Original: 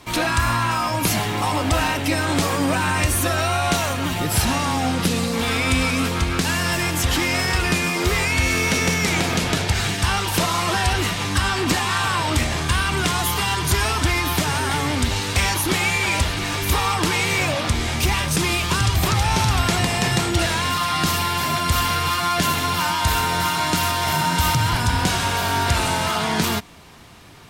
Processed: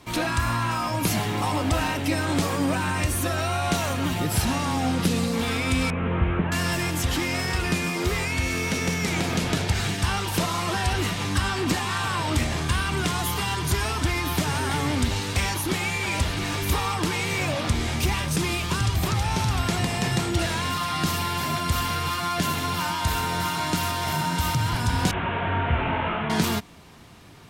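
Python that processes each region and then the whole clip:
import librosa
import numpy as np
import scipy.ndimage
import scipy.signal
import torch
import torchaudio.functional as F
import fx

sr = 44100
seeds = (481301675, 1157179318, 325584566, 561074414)

y = fx.chain(x, sr, fx.delta_mod(bps=16000, step_db=-32.0),
    fx.notch(hz=270.0, q=6.0), at=(5.9, 6.52))
y = fx.chain(y, sr, fx.delta_mod(bps=16000, step_db=-22.5),
    fx.detune_double(cents=39), at=(25.11, 26.3))
y = fx.rider(y, sr, range_db=10, speed_s=0.5)
y = fx.peak_eq(y, sr, hz=180.0, db=4.0, octaves=2.9)
y = y * 10.0 ** (-6.0 / 20.0)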